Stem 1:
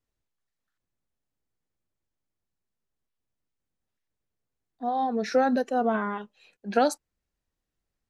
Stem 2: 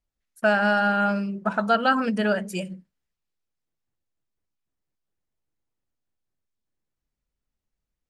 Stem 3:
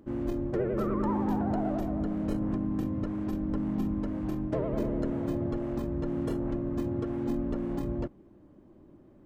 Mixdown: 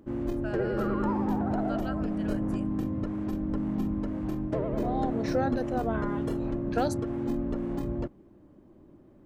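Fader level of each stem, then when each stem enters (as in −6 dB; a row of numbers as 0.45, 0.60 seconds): −6.5, −20.0, +0.5 decibels; 0.00, 0.00, 0.00 seconds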